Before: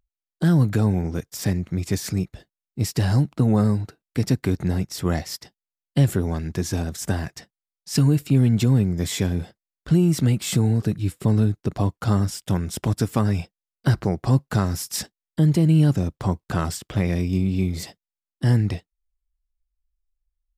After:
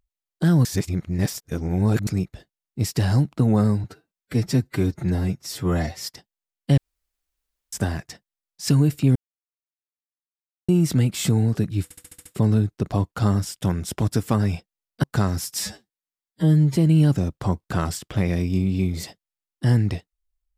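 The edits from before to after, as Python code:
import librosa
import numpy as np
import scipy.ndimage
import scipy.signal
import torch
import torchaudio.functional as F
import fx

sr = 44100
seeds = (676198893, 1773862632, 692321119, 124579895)

y = fx.edit(x, sr, fx.reverse_span(start_s=0.65, length_s=1.42),
    fx.stretch_span(start_s=3.84, length_s=1.45, factor=1.5),
    fx.room_tone_fill(start_s=6.05, length_s=0.95),
    fx.silence(start_s=8.43, length_s=1.53),
    fx.stutter(start_s=11.11, slice_s=0.07, count=7),
    fx.cut(start_s=13.89, length_s=0.52),
    fx.stretch_span(start_s=14.98, length_s=0.58, factor=2.0), tone=tone)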